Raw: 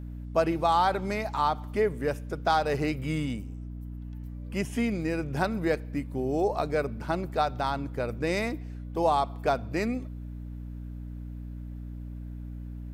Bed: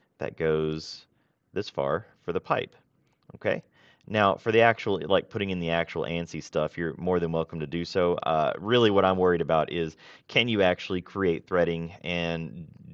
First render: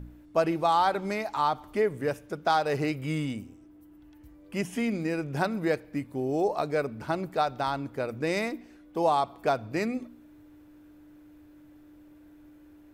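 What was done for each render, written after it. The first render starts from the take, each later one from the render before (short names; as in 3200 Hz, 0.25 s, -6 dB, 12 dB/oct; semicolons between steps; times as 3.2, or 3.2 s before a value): de-hum 60 Hz, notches 4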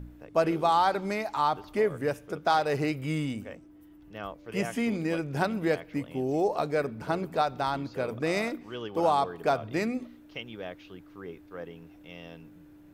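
add bed -17 dB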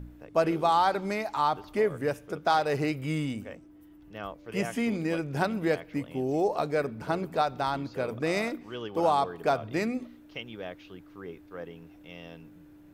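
nothing audible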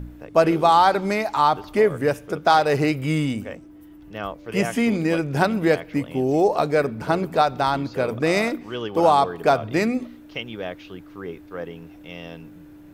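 gain +8 dB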